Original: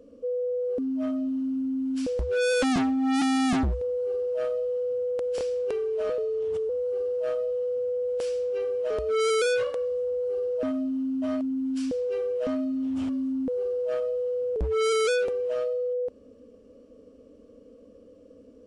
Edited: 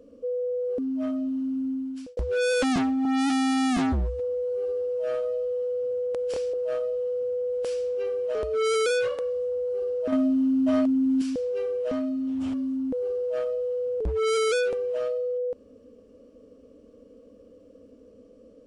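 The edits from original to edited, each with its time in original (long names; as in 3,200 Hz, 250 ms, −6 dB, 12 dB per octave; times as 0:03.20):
0:01.70–0:02.17: fade out linear
0:03.05–0:04.96: time-stretch 1.5×
0:05.58–0:07.09: remove
0:10.68–0:11.77: clip gain +6 dB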